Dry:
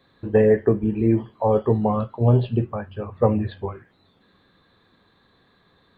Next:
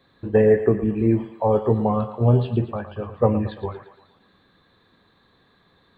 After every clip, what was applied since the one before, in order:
feedback echo with a high-pass in the loop 114 ms, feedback 58%, high-pass 430 Hz, level −11 dB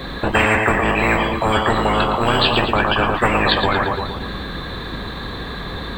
sub-octave generator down 2 octaves, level +2 dB
every bin compressed towards the loudest bin 10 to 1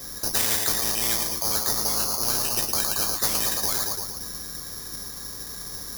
bad sample-rate conversion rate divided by 8×, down filtered, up zero stuff
level −16.5 dB

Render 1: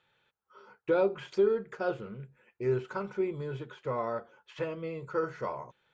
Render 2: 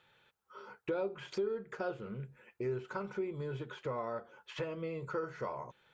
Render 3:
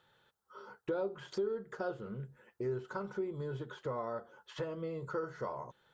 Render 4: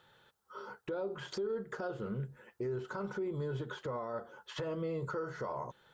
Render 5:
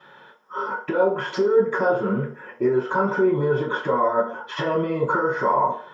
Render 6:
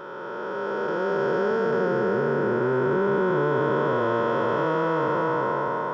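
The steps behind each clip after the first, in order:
downward compressor 2.5 to 1, threshold −43 dBFS, peak gain reduction 14.5 dB; level +4 dB
parametric band 2,400 Hz −12.5 dB 0.39 octaves
brickwall limiter −35 dBFS, peak gain reduction 10 dB; level +5 dB
convolution reverb RT60 0.50 s, pre-delay 3 ms, DRR −15 dB
spectrum smeared in time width 1,360 ms; level +4 dB

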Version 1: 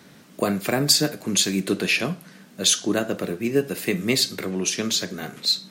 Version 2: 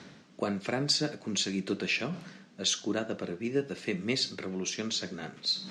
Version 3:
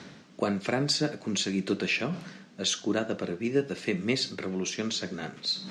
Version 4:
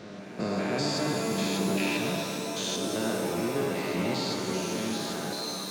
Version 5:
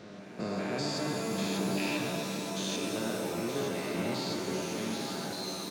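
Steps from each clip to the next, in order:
low-pass filter 6,500 Hz 24 dB per octave; reversed playback; upward compression, threshold −25 dBFS; reversed playback; level −8.5 dB
dynamic equaliser 5,100 Hz, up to −4 dB, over −40 dBFS, Q 0.73; level +3.5 dB
spectrum averaged block by block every 200 ms; backwards echo 387 ms −14.5 dB; reverb with rising layers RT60 3 s, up +7 semitones, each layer −2 dB, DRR 2.5 dB
single-tap delay 922 ms −8 dB; level −4.5 dB

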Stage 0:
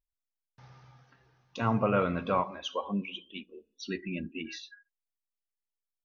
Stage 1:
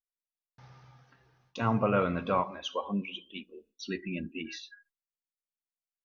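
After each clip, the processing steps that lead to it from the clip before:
noise gate with hold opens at −57 dBFS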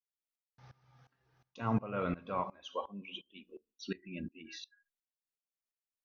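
tremolo with a ramp in dB swelling 2.8 Hz, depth 21 dB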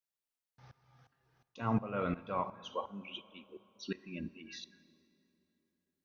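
dense smooth reverb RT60 3.6 s, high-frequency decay 0.6×, DRR 17.5 dB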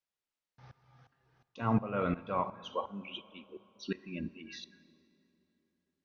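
high-frequency loss of the air 75 metres
level +3 dB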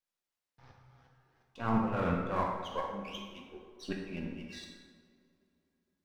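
gain on one half-wave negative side −7 dB
dense smooth reverb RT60 1.4 s, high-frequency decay 0.6×, DRR −0.5 dB

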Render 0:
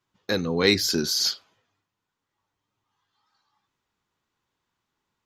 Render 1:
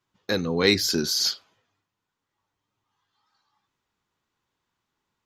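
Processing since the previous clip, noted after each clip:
no processing that can be heard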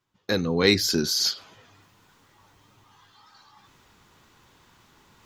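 low-shelf EQ 170 Hz +3.5 dB
reversed playback
upward compression, threshold −39 dBFS
reversed playback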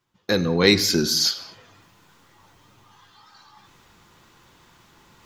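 convolution reverb, pre-delay 6 ms, DRR 11 dB
level +3 dB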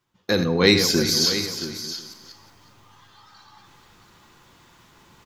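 feedback delay that plays each chunk backwards 183 ms, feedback 41%, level −9 dB
single-tap delay 674 ms −12 dB

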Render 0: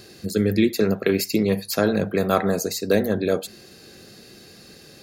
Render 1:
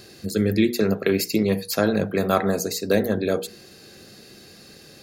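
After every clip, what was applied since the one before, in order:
mains-hum notches 60/120/180/240/300/360/420/480 Hz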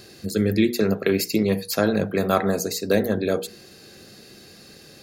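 no processing that can be heard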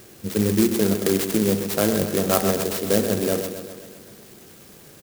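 repeating echo 130 ms, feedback 60%, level −9 dB
converter with an unsteady clock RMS 0.12 ms

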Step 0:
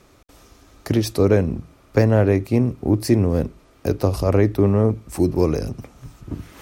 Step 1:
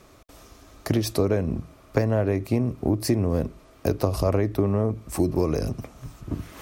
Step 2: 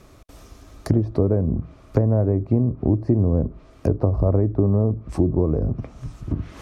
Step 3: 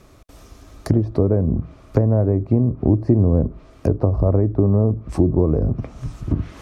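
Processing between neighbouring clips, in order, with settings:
high-shelf EQ 12,000 Hz +3 dB; downward compressor, threshold −18 dBFS, peak gain reduction 8.5 dB; hollow resonant body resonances 640/1,100 Hz, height 6 dB
dynamic equaliser 2,400 Hz, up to −7 dB, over −47 dBFS, Q 0.88; treble cut that deepens with the level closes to 1,000 Hz, closed at −22 dBFS; low-shelf EQ 230 Hz +7.5 dB
automatic gain control gain up to 5 dB

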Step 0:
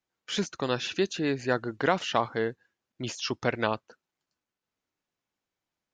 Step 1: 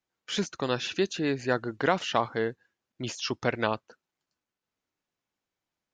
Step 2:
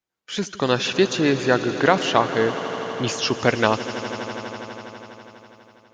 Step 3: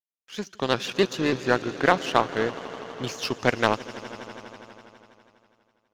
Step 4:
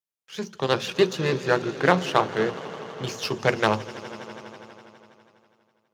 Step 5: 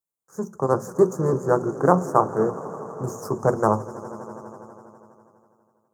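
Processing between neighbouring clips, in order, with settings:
no processing that can be heard
automatic gain control gain up to 13.5 dB; on a send: echo that builds up and dies away 82 ms, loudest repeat 5, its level −16.5 dB; on the sum: level −1 dB
power curve on the samples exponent 1.4; pitch modulation by a square or saw wave saw up 6.8 Hz, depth 100 cents
high-pass filter 180 Hz 12 dB per octave; on a send at −11 dB: convolution reverb RT60 0.35 s, pre-delay 3 ms
Chebyshev band-stop filter 1,200–7,100 Hz, order 3; level +3.5 dB

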